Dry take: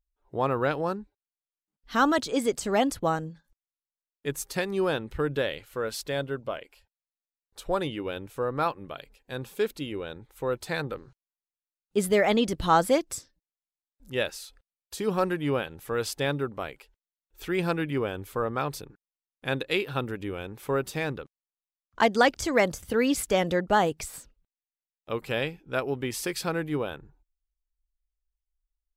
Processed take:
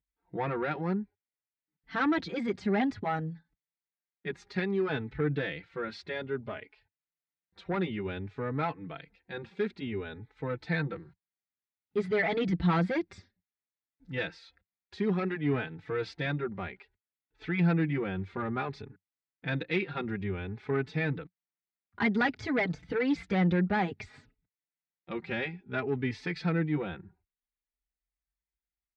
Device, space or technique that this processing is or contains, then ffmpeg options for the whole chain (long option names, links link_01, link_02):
barber-pole flanger into a guitar amplifier: -filter_complex "[0:a]asettb=1/sr,asplit=3[link_01][link_02][link_03];[link_01]atrim=end=0.834[link_04];[link_02]atrim=start=0.83:end=2.06,asetpts=PTS-STARTPTS,afade=type=in:duration=0.004:curve=qsin,afade=type=out:start_time=1.226:duration=0.004:curve=qsin,bandreject=frequency=3800:width=8.6[link_05];[link_03]atrim=start=2.056[link_06];[link_04][link_05]acrossfade=duration=0.004:curve1=hsin:curve2=qsin[link_07];[link_07][link_06]acrossfade=duration=0.004:curve1=qsin:curve2=hsin,asplit=2[link_08][link_09];[link_09]adelay=4.1,afreqshift=0.57[link_10];[link_08][link_10]amix=inputs=2:normalize=1,asoftclip=type=tanh:threshold=-23dB,highpass=77,equalizer=frequency=95:width_type=q:width=4:gain=5,equalizer=frequency=180:width_type=q:width=4:gain=8,equalizer=frequency=560:width_type=q:width=4:gain=-10,equalizer=frequency=1100:width_type=q:width=4:gain=-7,equalizer=frequency=2000:width_type=q:width=4:gain=5,equalizer=frequency=3000:width_type=q:width=4:gain=-8,lowpass=frequency=3700:width=0.5412,lowpass=frequency=3700:width=1.3066,volume=2.5dB"